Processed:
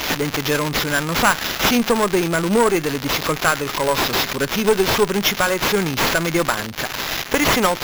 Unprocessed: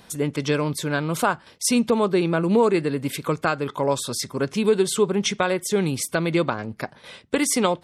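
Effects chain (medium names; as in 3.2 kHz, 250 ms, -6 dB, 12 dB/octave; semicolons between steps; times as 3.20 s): zero-crossing glitches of -16.5 dBFS; dynamic bell 1.6 kHz, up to +7 dB, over -36 dBFS, Q 0.74; valve stage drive 8 dB, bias 0.75; sample-and-hold 5×; trim +5.5 dB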